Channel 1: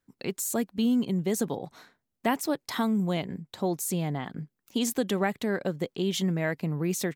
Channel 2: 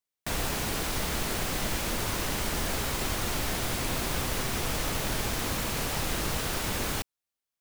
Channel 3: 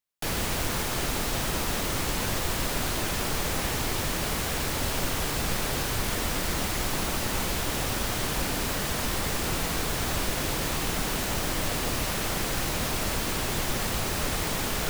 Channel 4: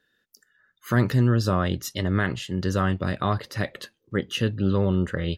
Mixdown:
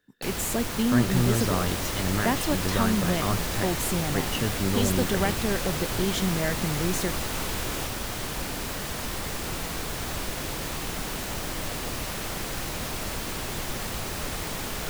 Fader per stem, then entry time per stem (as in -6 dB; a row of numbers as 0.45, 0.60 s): 0.0, -4.0, -3.5, -4.5 dB; 0.00, 0.85, 0.00, 0.00 s